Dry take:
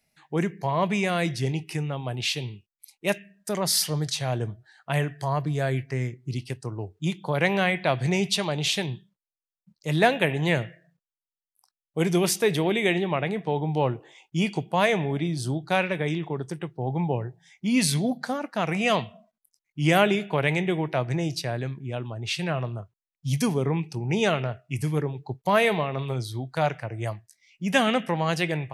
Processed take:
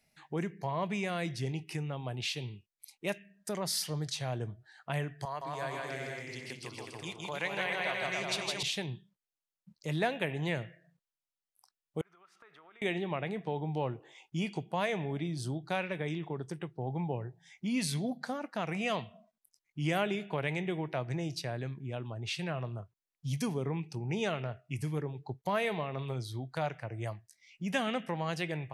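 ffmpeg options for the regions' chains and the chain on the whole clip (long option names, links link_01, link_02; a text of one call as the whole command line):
ffmpeg -i in.wav -filter_complex "[0:a]asettb=1/sr,asplit=3[link_01][link_02][link_03];[link_01]atrim=end=5.254[link_04];[link_02]atrim=start=5.25:end=8.63,asetpts=PTS-STARTPTS,afade=type=in:duration=0.004:curve=qsin,afade=type=out:start_time=3.376:duration=0.004:curve=qsin,highpass=frequency=970:poles=1,aecho=1:1:160|280|370|437.5|488.1|526.1:0.794|0.631|0.501|0.398|0.316|0.251,atrim=end_sample=149058[link_05];[link_03]atrim=start=8.626[link_06];[link_04][link_05]acrossfade=duration=0.004:curve1=hsin:curve2=qsin[link_07];[link_07][link_06]acrossfade=duration=0.004:curve1=qsin:curve2=hsin,asettb=1/sr,asplit=3[link_08][link_09][link_10];[link_08]atrim=end=12.014[link_11];[link_09]atrim=start=12.01:end=12.82,asetpts=PTS-STARTPTS,afade=type=in:duration=0.004:curve=qsin,afade=type=out:start_time=0.806:duration=0.004:curve=qsin,bandpass=frequency=1300:width_type=q:width=10,acompressor=threshold=-53dB:ratio=10:attack=3.2:release=140:knee=1:detection=peak[link_12];[link_10]atrim=start=12.816[link_13];[link_11][link_12]acrossfade=duration=0.004:curve1=hsin:curve2=qsin[link_14];[link_14][link_13]acrossfade=duration=0.004:curve1=qsin:curve2=hsin,highshelf=frequency=11000:gain=-5,acompressor=threshold=-47dB:ratio=1.5" out.wav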